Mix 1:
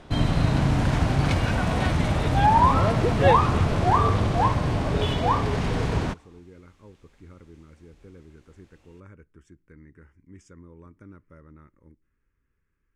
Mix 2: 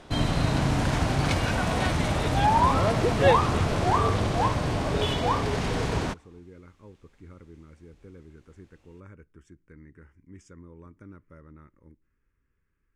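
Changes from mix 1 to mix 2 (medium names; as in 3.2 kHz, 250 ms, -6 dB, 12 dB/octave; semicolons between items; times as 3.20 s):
first sound: add tone controls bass -4 dB, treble +4 dB; second sound -3.5 dB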